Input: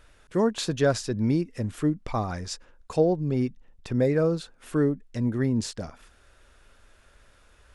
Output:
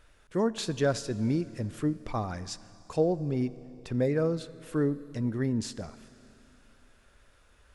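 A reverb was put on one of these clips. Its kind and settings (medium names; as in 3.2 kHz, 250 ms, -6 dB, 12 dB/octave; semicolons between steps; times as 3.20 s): Schroeder reverb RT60 3.1 s, combs from 28 ms, DRR 16.5 dB; trim -4 dB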